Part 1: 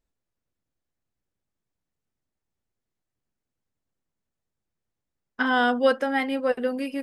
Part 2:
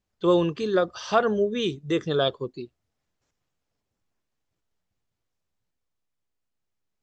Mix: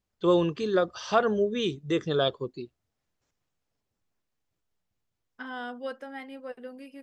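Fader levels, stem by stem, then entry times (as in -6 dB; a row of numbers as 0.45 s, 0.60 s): -15.5 dB, -2.0 dB; 0.00 s, 0.00 s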